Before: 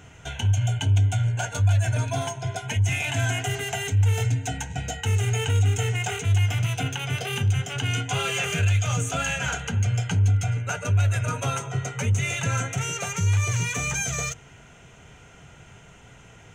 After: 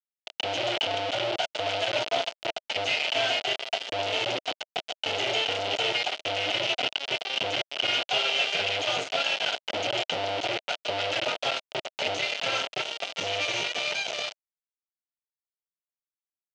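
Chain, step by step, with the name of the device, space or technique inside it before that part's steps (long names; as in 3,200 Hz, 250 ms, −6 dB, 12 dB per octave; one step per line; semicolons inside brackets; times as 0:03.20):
hand-held game console (bit reduction 4 bits; loudspeaker in its box 500–4,600 Hz, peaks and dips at 630 Hz +8 dB, 1,100 Hz −9 dB, 1,700 Hz −7 dB, 3,000 Hz +7 dB)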